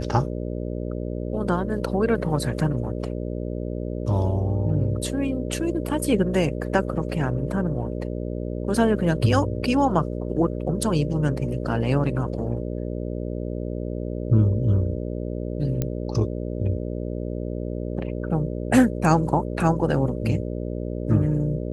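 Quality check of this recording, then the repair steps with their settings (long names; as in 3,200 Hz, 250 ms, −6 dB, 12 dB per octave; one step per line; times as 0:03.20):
mains buzz 60 Hz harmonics 10 −29 dBFS
0:15.82: click −12 dBFS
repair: click removal
hum removal 60 Hz, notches 10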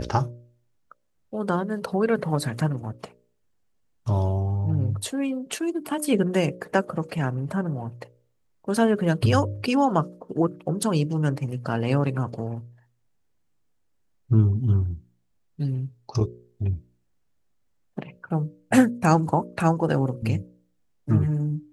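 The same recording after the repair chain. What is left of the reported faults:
none of them is left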